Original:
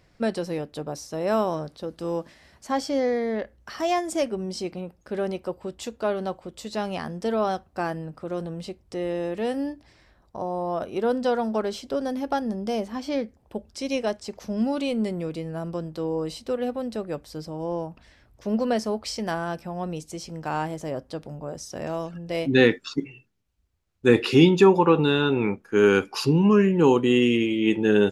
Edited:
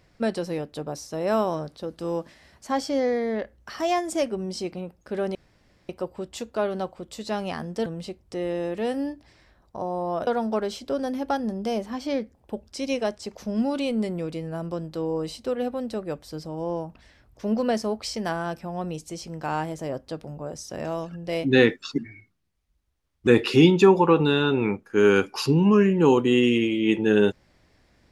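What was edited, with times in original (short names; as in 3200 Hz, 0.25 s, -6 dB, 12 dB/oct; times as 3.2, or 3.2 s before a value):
5.35 insert room tone 0.54 s
7.32–8.46 cut
10.87–11.29 cut
23–24.06 speed 82%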